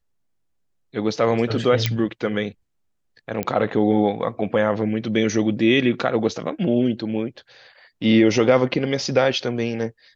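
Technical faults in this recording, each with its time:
1.86 pop -5 dBFS
3.43 pop -11 dBFS

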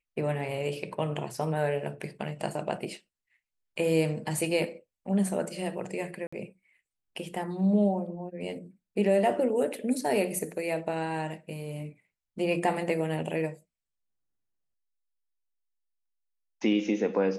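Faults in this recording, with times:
6.27–6.33 gap 55 ms

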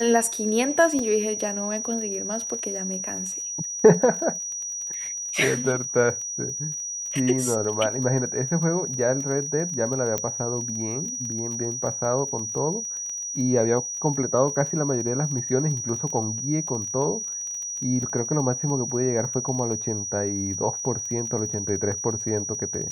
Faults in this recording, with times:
crackle 22/s -32 dBFS
tone 5800 Hz -29 dBFS
0.99 gap 2.5 ms
10.18 pop -10 dBFS

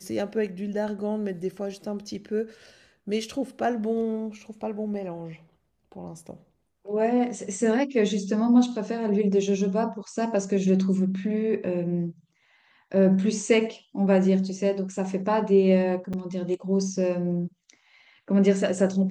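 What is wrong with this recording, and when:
16.13–16.14 gap 6.1 ms

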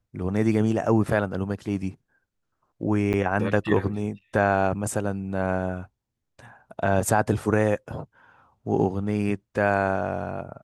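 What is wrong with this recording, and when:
3.13–3.14 gap 9 ms

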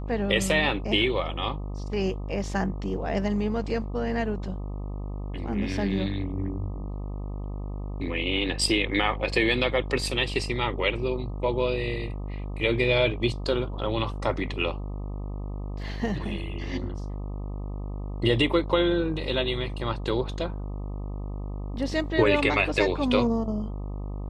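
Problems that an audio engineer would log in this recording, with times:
buzz 50 Hz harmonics 25 -33 dBFS

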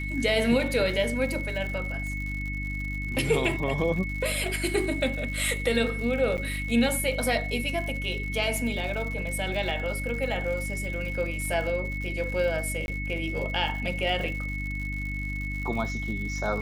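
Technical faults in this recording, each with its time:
crackle 110/s -35 dBFS
hum 50 Hz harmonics 6 -33 dBFS
tone 2200 Hz -34 dBFS
6.37–6.38 gap 8.6 ms
12.86–12.88 gap 21 ms

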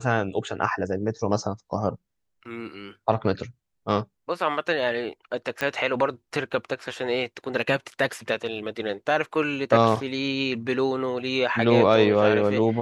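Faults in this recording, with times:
5.61 pop -12 dBFS

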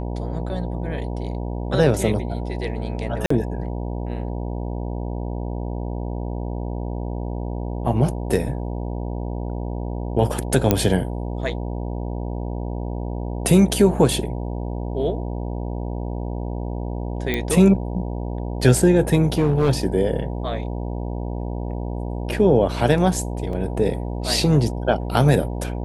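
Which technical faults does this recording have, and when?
buzz 60 Hz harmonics 16 -27 dBFS
3.26–3.3 gap 44 ms
10.71 pop -2 dBFS
17.34 pop -9 dBFS
19.32–19.7 clipped -13 dBFS
23.53 gap 2.4 ms

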